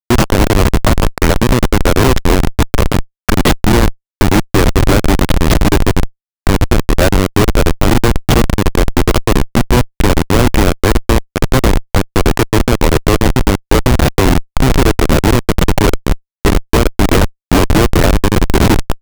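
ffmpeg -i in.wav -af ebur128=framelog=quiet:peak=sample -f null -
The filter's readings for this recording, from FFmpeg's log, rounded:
Integrated loudness:
  I:         -13.0 LUFS
  Threshold: -23.0 LUFS
Loudness range:
  LRA:         0.8 LU
  Threshold: -33.1 LUFS
  LRA low:   -13.4 LUFS
  LRA high:  -12.6 LUFS
Sample peak:
  Peak:       -1.4 dBFS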